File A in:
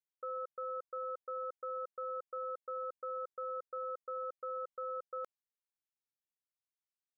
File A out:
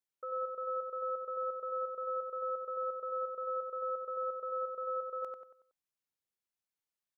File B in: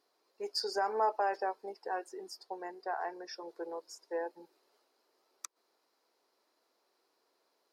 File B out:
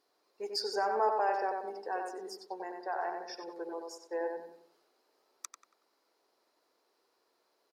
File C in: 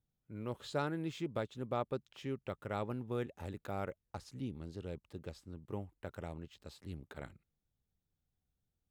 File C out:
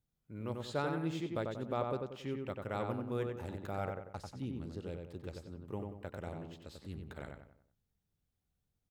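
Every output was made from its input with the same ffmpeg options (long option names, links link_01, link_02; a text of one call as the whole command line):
ffmpeg -i in.wav -filter_complex "[0:a]asplit=2[link_01][link_02];[link_02]adelay=93,lowpass=frequency=2500:poles=1,volume=-3.5dB,asplit=2[link_03][link_04];[link_04]adelay=93,lowpass=frequency=2500:poles=1,volume=0.42,asplit=2[link_05][link_06];[link_06]adelay=93,lowpass=frequency=2500:poles=1,volume=0.42,asplit=2[link_07][link_08];[link_08]adelay=93,lowpass=frequency=2500:poles=1,volume=0.42,asplit=2[link_09][link_10];[link_10]adelay=93,lowpass=frequency=2500:poles=1,volume=0.42[link_11];[link_01][link_03][link_05][link_07][link_09][link_11]amix=inputs=6:normalize=0" out.wav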